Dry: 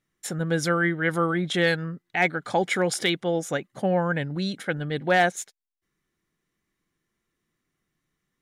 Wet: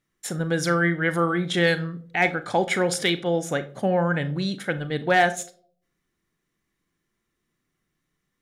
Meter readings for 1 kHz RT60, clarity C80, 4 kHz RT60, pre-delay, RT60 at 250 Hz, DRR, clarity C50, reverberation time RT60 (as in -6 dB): 0.40 s, 20.5 dB, 0.30 s, 35 ms, 0.60 s, 11.5 dB, 16.5 dB, 0.55 s